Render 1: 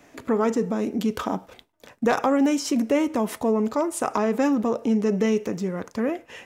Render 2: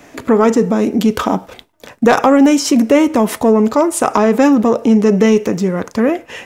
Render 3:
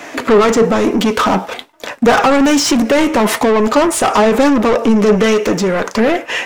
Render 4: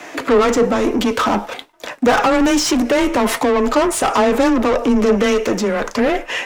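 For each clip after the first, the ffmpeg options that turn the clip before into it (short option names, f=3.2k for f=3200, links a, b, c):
-af "acontrast=79,volume=4.5dB"
-filter_complex "[0:a]asplit=2[a][b];[b]highpass=f=720:p=1,volume=24dB,asoftclip=type=tanh:threshold=-1dB[c];[a][c]amix=inputs=2:normalize=0,lowpass=f=4.5k:p=1,volume=-6dB,flanger=delay=2.8:depth=2.5:regen=75:speed=1.1:shape=triangular,volume=1dB"
-af "afreqshift=16,volume=-3.5dB"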